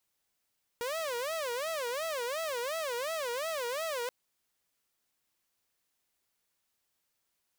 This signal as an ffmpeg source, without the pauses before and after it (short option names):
-f lavfi -i "aevalsrc='0.0316*(2*mod((564.5*t-92.5/(2*PI*2.8)*sin(2*PI*2.8*t)),1)-1)':d=3.28:s=44100"